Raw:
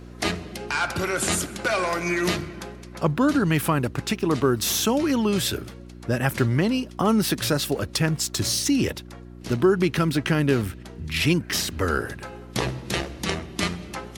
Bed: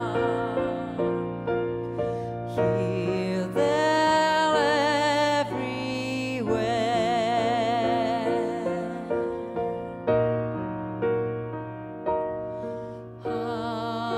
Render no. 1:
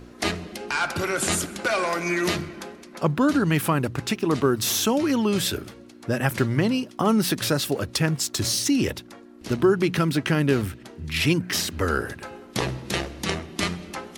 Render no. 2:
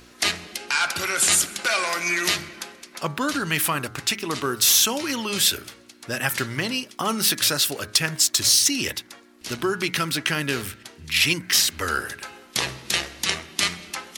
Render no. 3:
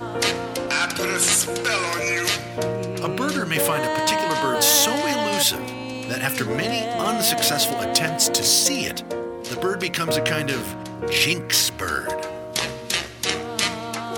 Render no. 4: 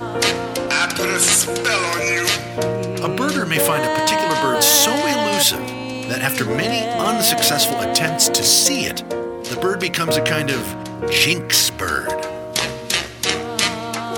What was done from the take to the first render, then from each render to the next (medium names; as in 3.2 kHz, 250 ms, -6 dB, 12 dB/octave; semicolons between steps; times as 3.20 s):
de-hum 60 Hz, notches 3
tilt shelf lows -8.5 dB, about 1.1 kHz; de-hum 104.9 Hz, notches 22
add bed -1.5 dB
trim +4 dB; peak limiter -2 dBFS, peak gain reduction 2.5 dB